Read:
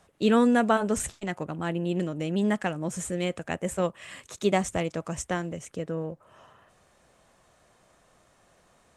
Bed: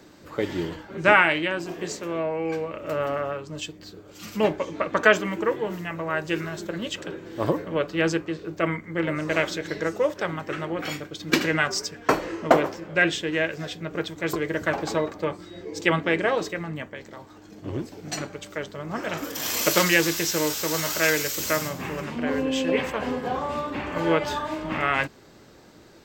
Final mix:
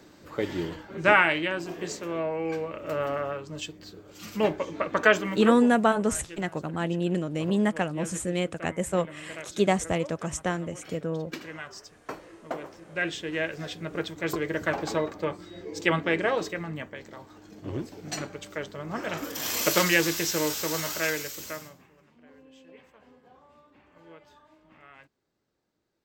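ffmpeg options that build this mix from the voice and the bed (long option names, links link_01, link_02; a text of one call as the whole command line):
ffmpeg -i stem1.wav -i stem2.wav -filter_complex "[0:a]adelay=5150,volume=1dB[link_01];[1:a]volume=12dB,afade=type=out:start_time=5.46:duration=0.3:silence=0.188365,afade=type=in:start_time=12.57:duration=1.16:silence=0.188365,afade=type=out:start_time=20.59:duration=1.28:silence=0.0501187[link_02];[link_01][link_02]amix=inputs=2:normalize=0" out.wav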